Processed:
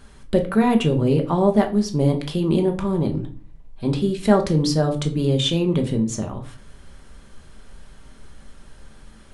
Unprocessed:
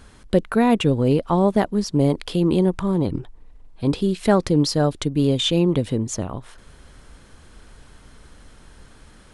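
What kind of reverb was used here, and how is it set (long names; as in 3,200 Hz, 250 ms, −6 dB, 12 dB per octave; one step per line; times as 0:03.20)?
rectangular room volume 280 cubic metres, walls furnished, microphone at 1.2 metres
level −2.5 dB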